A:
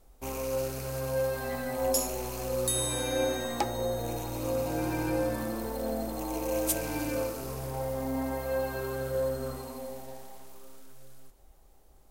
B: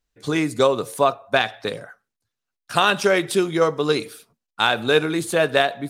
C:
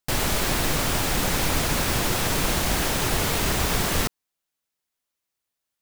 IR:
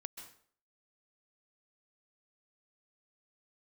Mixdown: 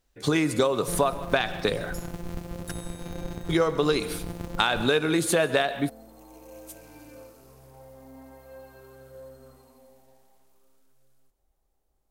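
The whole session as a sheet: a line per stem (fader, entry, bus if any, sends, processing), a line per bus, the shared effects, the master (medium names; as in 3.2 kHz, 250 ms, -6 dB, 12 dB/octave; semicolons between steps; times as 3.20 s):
-15.5 dB, 0.00 s, no send, none
+2.5 dB, 0.00 s, muted 2.71–3.49 s, send -5 dB, compression 3:1, threshold -21 dBFS, peak gain reduction 7.5 dB
-11.5 dB, 0.80 s, no send, sorted samples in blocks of 256 samples; reverb removal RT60 1.6 s; tilt shelf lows +5.5 dB, about 750 Hz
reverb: on, RT60 0.55 s, pre-delay 122 ms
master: compression 2:1, threshold -22 dBFS, peak gain reduction 5.5 dB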